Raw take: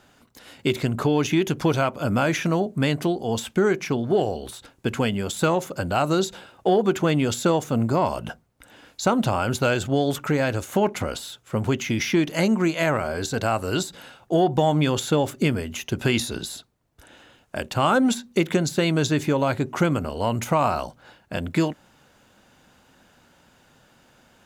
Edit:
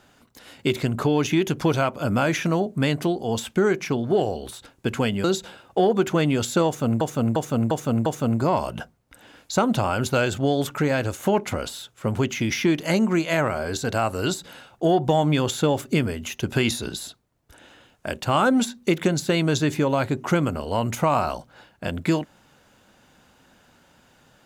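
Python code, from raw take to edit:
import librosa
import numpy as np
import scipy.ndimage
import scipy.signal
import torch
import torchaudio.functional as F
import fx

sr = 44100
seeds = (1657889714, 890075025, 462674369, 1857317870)

y = fx.edit(x, sr, fx.cut(start_s=5.24, length_s=0.89),
    fx.repeat(start_s=7.55, length_s=0.35, count=5), tone=tone)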